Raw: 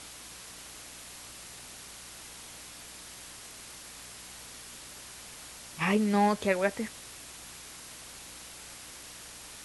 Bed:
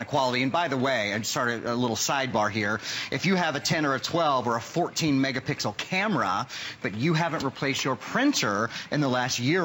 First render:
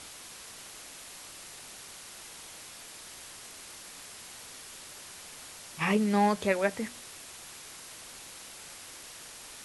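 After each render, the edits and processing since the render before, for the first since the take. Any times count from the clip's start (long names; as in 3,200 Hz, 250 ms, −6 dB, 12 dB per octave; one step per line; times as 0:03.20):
hum removal 60 Hz, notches 5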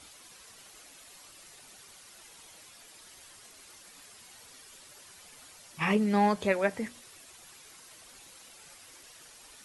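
broadband denoise 9 dB, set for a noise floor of −47 dBFS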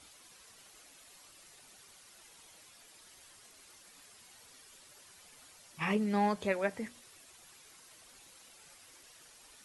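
level −5 dB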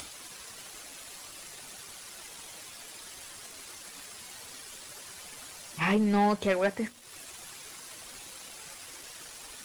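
upward compression, threshold −43 dBFS
leveller curve on the samples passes 2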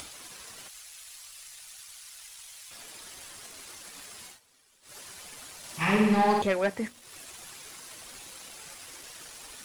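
0:00.68–0:02.71: guitar amp tone stack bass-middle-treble 10-0-10
0:04.26–0:04.96: duck −18.5 dB, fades 0.14 s
0:05.58–0:06.42: flutter between parallel walls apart 9.5 metres, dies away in 1.2 s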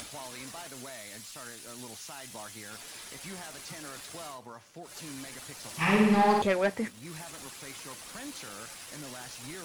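mix in bed −20.5 dB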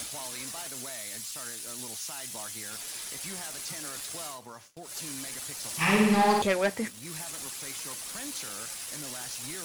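noise gate with hold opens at −42 dBFS
high-shelf EQ 4,100 Hz +10 dB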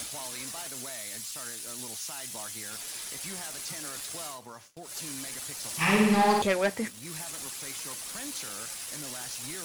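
no processing that can be heard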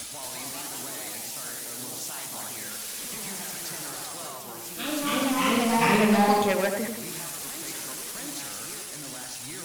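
delay with pitch and tempo change per echo 228 ms, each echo +2 semitones, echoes 3
tape delay 90 ms, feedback 54%, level −3 dB, low-pass 1,300 Hz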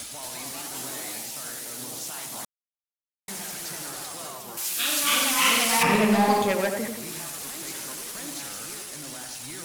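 0:00.72–0:01.23: double-tracking delay 23 ms −5 dB
0:02.45–0:03.28: silence
0:04.57–0:05.83: tilt shelving filter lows −10 dB, about 920 Hz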